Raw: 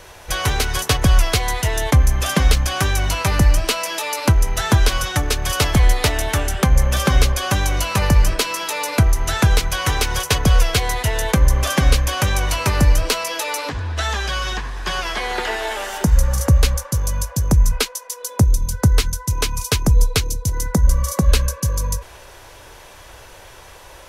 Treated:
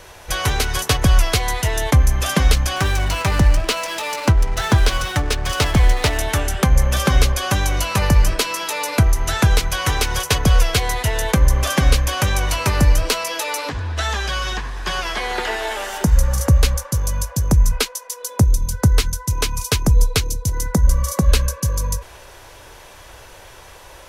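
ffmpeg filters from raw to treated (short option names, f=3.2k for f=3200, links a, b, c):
-filter_complex "[0:a]asettb=1/sr,asplit=3[a][b][c];[a]atrim=end=2.764[d];[b]atrim=start=2.76:end=6.18,asetpts=PTS-STARTPTS,afade=t=in:d=0.004:c=qsin,afade=t=out:st=3.416:d=0.004:c=qsin,adynamicsmooth=sensitivity=7:basefreq=570[e];[c]atrim=start=6.176[f];[d][e]acrossfade=d=0.004:c1=hsin:c2=qsin[g];[g][f]acrossfade=d=0.004:c1=qsin:c2=hsin"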